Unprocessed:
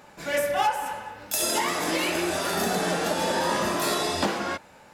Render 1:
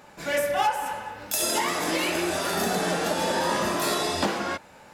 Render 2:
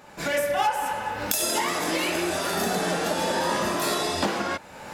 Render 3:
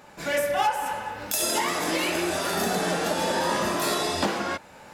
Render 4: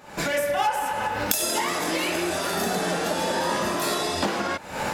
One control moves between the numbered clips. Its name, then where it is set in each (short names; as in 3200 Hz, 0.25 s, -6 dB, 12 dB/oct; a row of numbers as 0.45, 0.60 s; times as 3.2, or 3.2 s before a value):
recorder AGC, rising by: 5.2, 32, 13, 83 dB/s